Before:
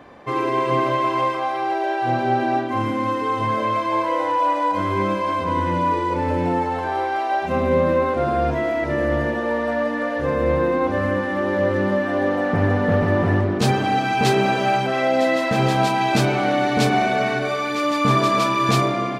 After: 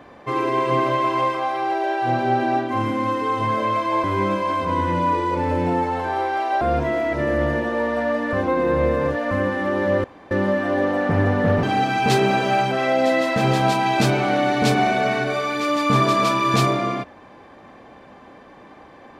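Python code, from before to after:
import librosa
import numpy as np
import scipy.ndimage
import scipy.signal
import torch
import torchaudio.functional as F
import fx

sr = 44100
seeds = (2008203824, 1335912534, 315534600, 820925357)

y = fx.edit(x, sr, fx.cut(start_s=4.04, length_s=0.79),
    fx.cut(start_s=7.4, length_s=0.92),
    fx.reverse_span(start_s=10.04, length_s=0.98),
    fx.insert_room_tone(at_s=11.75, length_s=0.27),
    fx.cut(start_s=13.07, length_s=0.71), tone=tone)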